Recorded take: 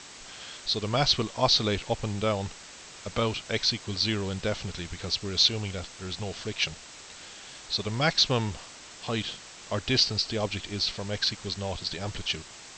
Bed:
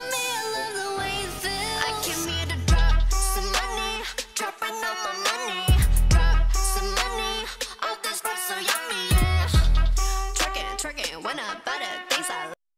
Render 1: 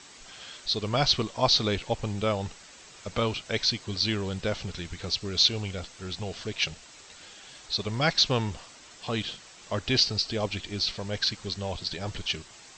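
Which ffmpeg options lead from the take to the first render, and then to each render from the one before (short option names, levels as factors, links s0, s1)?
-af "afftdn=nr=6:nf=-47"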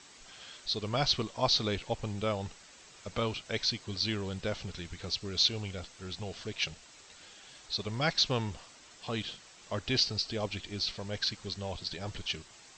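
-af "volume=0.562"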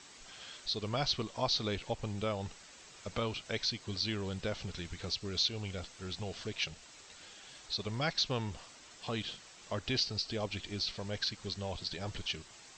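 -af "acompressor=threshold=0.0158:ratio=1.5"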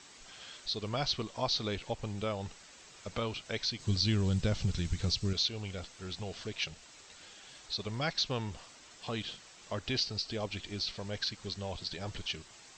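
-filter_complex "[0:a]asettb=1/sr,asplit=3[s0][s1][s2];[s0]atrim=end=3.794[s3];[s1]atrim=start=3.79:end=5.33,asetpts=PTS-STARTPTS,afade=t=in:d=0.004:c=qsin,afade=t=out:st=1.536:d=0.004:c=qsin,bass=f=250:g=12,treble=f=4000:g=6[s4];[s2]atrim=start=5.326[s5];[s3][s4]acrossfade=d=0.004:c1=hsin:c2=qsin[s6];[s6][s5]acrossfade=d=0.004:c1=qsin:c2=hsin"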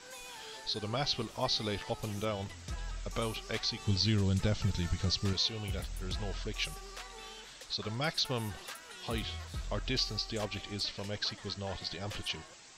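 -filter_complex "[1:a]volume=0.0841[s0];[0:a][s0]amix=inputs=2:normalize=0"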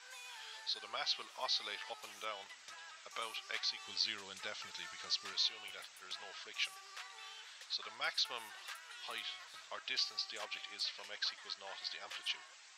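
-af "highpass=1200,aemphasis=mode=reproduction:type=cd"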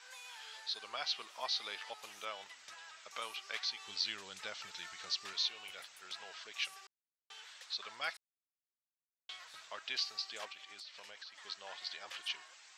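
-filter_complex "[0:a]asettb=1/sr,asplit=3[s0][s1][s2];[s0]atrim=end=10.524[s3];[s1]atrim=start=10.52:end=11.4,asetpts=PTS-STARTPTS,afade=t=in:d=0.004:c=qsin,afade=t=out:st=0.876:d=0.004:c=qsin,acompressor=threshold=0.00398:ratio=5:attack=3.2:release=140:knee=1:detection=peak[s4];[s2]atrim=start=11.396[s5];[s3][s4]acrossfade=d=0.004:c1=hsin:c2=qsin[s6];[s6][s5]acrossfade=d=0.004:c1=qsin:c2=hsin,asplit=5[s7][s8][s9][s10][s11];[s7]atrim=end=6.87,asetpts=PTS-STARTPTS,afade=t=out:st=6.866:d=0.004:c=hsin[s12];[s8]atrim=start=6.87:end=7.3,asetpts=PTS-STARTPTS,volume=0[s13];[s9]atrim=start=7.3:end=8.17,asetpts=PTS-STARTPTS,afade=t=in:d=0.004:c=hsin,afade=t=out:st=0.866:d=0.004:c=hsin[s14];[s10]atrim=start=8.17:end=9.29,asetpts=PTS-STARTPTS,volume=0[s15];[s11]atrim=start=9.29,asetpts=PTS-STARTPTS,afade=t=in:d=0.004:c=hsin[s16];[s12][s13][s14][s15][s16]concat=n=5:v=0:a=1"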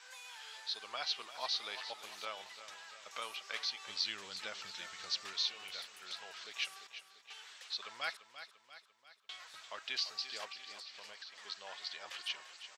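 -af "aecho=1:1:344|688|1032|1376|1720|2064:0.251|0.136|0.0732|0.0396|0.0214|0.0115"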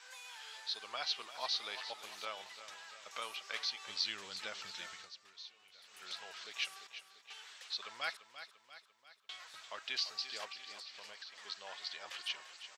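-filter_complex "[0:a]asplit=3[s0][s1][s2];[s0]atrim=end=5.11,asetpts=PTS-STARTPTS,afade=t=out:st=4.92:d=0.19:silence=0.158489[s3];[s1]atrim=start=5.11:end=5.81,asetpts=PTS-STARTPTS,volume=0.158[s4];[s2]atrim=start=5.81,asetpts=PTS-STARTPTS,afade=t=in:d=0.19:silence=0.158489[s5];[s3][s4][s5]concat=n=3:v=0:a=1"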